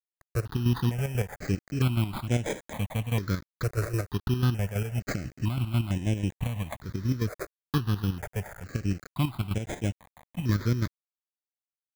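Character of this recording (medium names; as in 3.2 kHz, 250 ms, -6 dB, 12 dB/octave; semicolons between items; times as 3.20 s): aliases and images of a low sample rate 2.8 kHz, jitter 0%; chopped level 6.1 Hz, depth 60%, duty 45%; a quantiser's noise floor 8-bit, dither none; notches that jump at a steady rate 2.2 Hz 880–4400 Hz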